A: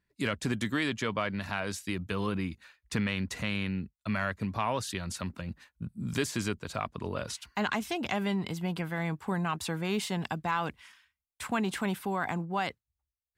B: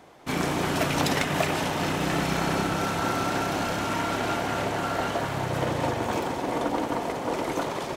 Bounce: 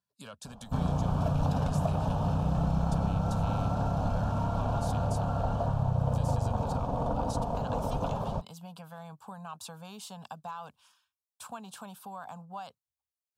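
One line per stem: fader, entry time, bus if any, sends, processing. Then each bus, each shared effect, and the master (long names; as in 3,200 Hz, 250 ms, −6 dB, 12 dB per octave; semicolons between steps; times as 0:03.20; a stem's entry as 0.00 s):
−3.0 dB, 0.00 s, no send, high-pass filter 110 Hz; downward compressor 3 to 1, threshold −32 dBFS, peak gain reduction 6.5 dB; low-shelf EQ 140 Hz −9 dB
−3.0 dB, 0.45 s, no send, spectral tilt −4.5 dB per octave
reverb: not used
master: phaser with its sweep stopped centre 830 Hz, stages 4; downward compressor 2 to 1, threshold −27 dBFS, peak gain reduction 5.5 dB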